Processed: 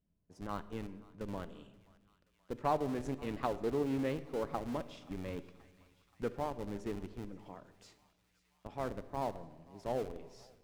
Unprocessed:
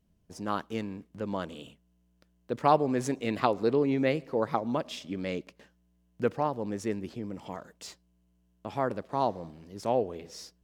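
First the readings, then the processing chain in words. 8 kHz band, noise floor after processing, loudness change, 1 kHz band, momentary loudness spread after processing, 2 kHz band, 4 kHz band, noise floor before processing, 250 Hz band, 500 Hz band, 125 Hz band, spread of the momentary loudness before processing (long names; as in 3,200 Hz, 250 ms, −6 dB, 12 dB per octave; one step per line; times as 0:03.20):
−11.5 dB, −75 dBFS, −8.5 dB, −9.5 dB, 16 LU, −10.0 dB, −11.0 dB, −70 dBFS, −8.0 dB, −8.5 dB, −6.5 dB, 17 LU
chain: high-shelf EQ 2,800 Hz −8 dB
in parallel at −3.5 dB: comparator with hysteresis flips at −30.5 dBFS
on the sum: tuned comb filter 200 Hz, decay 1.6 s, mix 50%
on a send: feedback echo with a high-pass in the loop 528 ms, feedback 84%, high-pass 1,100 Hz, level −20.5 dB
on the sum: rectangular room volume 790 cubic metres, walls mixed, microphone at 0.31 metres
highs frequency-modulated by the lows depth 0.15 ms
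level −4.5 dB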